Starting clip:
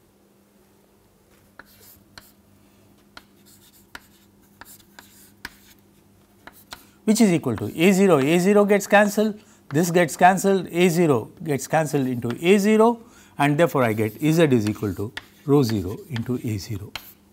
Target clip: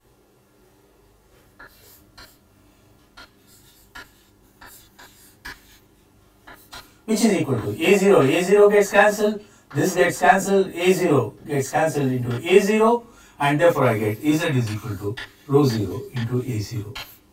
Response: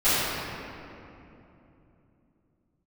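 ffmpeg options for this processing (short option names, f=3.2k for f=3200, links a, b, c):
-filter_complex "[0:a]asettb=1/sr,asplit=3[a][b][c];[a]atrim=end=14.314[d];[b]atrim=start=14.31:end=15.01,asetpts=PTS-STARTPTS,afade=t=in:d=0.004:c=qsin,afade=t=out:st=0.696:d=0.004:c=qsin,equalizer=f=400:t=o:w=1.1:g=-12.5[e];[c]atrim=start=15.006[f];[d][e]acrossfade=d=0.004:c1=hsin:c2=qsin[g];[g][f]acrossfade=d=0.004:c1=qsin:c2=hsin[h];[1:a]atrim=start_sample=2205,atrim=end_sample=4410,asetrate=61740,aresample=44100[i];[h][i]afir=irnorm=-1:irlink=0,volume=-10.5dB"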